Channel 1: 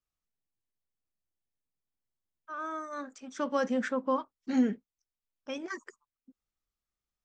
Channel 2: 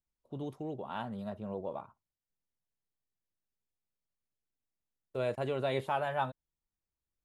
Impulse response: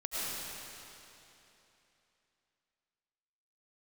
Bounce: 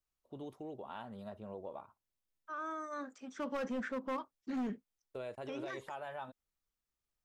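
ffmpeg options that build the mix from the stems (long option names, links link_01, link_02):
-filter_complex "[0:a]acrossover=split=2700[link_01][link_02];[link_02]acompressor=threshold=-54dB:ratio=4:attack=1:release=60[link_03];[link_01][link_03]amix=inputs=2:normalize=0,asoftclip=type=hard:threshold=-27.5dB,volume=-2.5dB[link_04];[1:a]equalizer=frequency=150:width=1.4:gain=-7.5,acompressor=threshold=-37dB:ratio=4,volume=-3.5dB[link_05];[link_04][link_05]amix=inputs=2:normalize=0,alimiter=level_in=9.5dB:limit=-24dB:level=0:latency=1:release=28,volume=-9.5dB"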